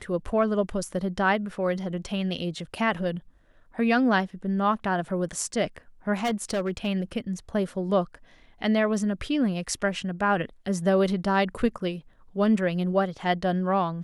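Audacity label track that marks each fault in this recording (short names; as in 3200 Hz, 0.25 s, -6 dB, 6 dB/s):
6.230000	6.880000	clipped -22 dBFS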